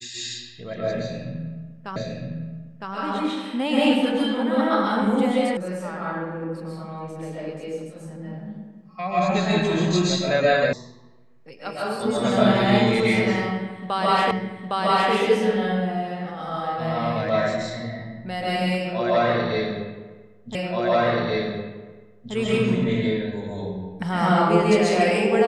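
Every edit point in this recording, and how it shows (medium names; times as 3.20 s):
1.96 s: repeat of the last 0.96 s
5.57 s: sound stops dead
10.73 s: sound stops dead
14.31 s: repeat of the last 0.81 s
20.55 s: repeat of the last 1.78 s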